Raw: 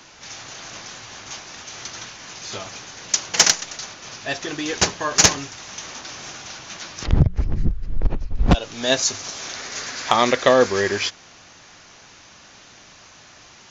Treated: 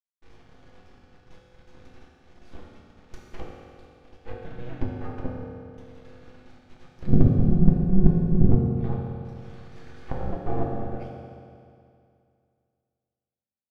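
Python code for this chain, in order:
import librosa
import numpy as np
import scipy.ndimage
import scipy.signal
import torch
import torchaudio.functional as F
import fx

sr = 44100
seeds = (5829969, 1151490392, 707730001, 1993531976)

y = fx.dereverb_blind(x, sr, rt60_s=1.2)
y = fx.quant_dither(y, sr, seeds[0], bits=6, dither='none')
y = scipy.signal.sosfilt(scipy.signal.butter(2, 3500.0, 'lowpass', fs=sr, output='sos'), y)
y = fx.env_lowpass_down(y, sr, base_hz=550.0, full_db=-19.0)
y = fx.low_shelf(y, sr, hz=120.0, db=7.0)
y = y * np.sin(2.0 * np.pi * 180.0 * np.arange(len(y)) / sr)
y = np.maximum(y, 0.0)
y = fx.tilt_eq(y, sr, slope=-3.5)
y = np.clip(10.0 ** (-10.0 / 20.0) * y, -1.0, 1.0) / 10.0 ** (-10.0 / 20.0)
y = fx.rev_fdn(y, sr, rt60_s=2.4, lf_ratio=1.0, hf_ratio=0.95, size_ms=12.0, drr_db=-3.5)
y = y * 10.0 ** (-12.0 / 20.0)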